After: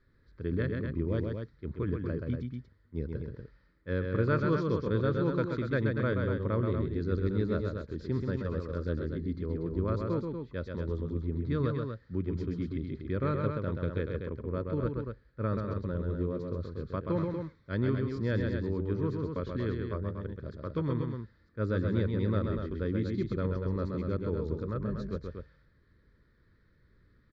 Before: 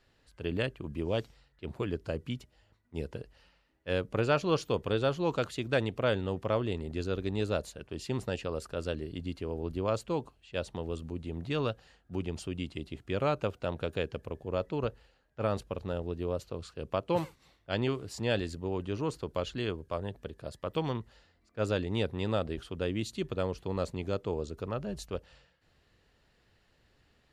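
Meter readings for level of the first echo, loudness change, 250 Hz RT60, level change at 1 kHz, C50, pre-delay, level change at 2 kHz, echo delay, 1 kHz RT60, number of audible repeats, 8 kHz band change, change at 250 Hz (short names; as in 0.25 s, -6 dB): -4.5 dB, +1.5 dB, none, -3.0 dB, none, none, -1.5 dB, 0.13 s, none, 2, under -15 dB, +3.5 dB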